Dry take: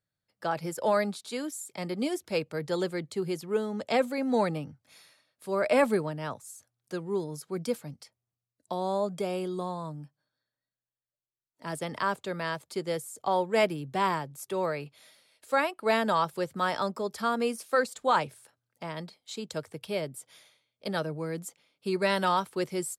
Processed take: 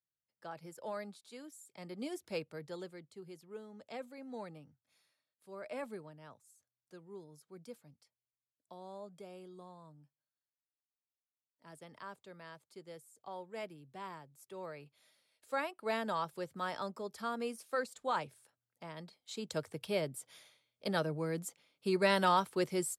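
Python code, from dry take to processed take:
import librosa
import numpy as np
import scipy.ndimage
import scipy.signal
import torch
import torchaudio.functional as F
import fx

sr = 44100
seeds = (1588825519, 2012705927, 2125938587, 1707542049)

y = fx.gain(x, sr, db=fx.line((1.59, -16.0), (2.3, -8.5), (3.06, -19.0), (14.09, -19.0), (15.54, -10.0), (18.98, -10.0), (19.54, -2.5)))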